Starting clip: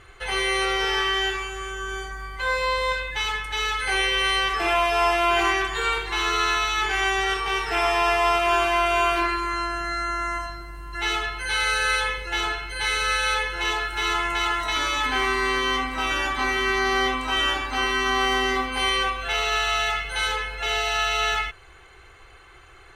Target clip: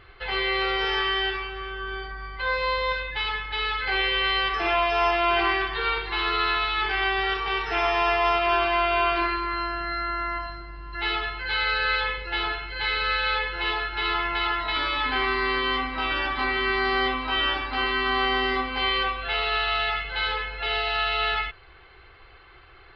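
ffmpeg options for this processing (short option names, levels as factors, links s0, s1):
-af "aresample=11025,aresample=44100,volume=0.841"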